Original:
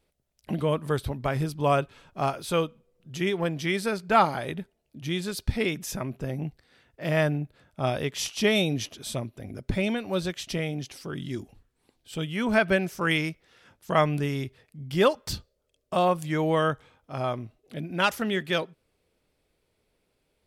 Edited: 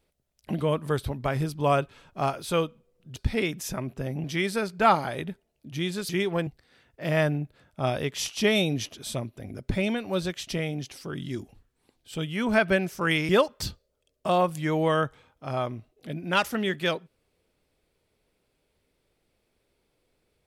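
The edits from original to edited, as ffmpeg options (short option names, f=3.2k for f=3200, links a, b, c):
-filter_complex "[0:a]asplit=6[a][b][c][d][e][f];[a]atrim=end=3.162[g];[b]atrim=start=5.388:end=6.472[h];[c]atrim=start=3.538:end=5.392[i];[d]atrim=start=3.158:end=3.542[j];[e]atrim=start=6.468:end=13.292[k];[f]atrim=start=14.958[l];[g][h]acrossfade=d=0.004:c1=hsin:c2=hsin[m];[m][i]acrossfade=d=0.004:c1=hsin:c2=hsin[n];[n][j]acrossfade=d=0.004:c1=hsin:c2=hsin[o];[o][k]acrossfade=d=0.004:c1=hsin:c2=hsin[p];[p][l]acrossfade=d=0.004:c1=hsin:c2=hsin"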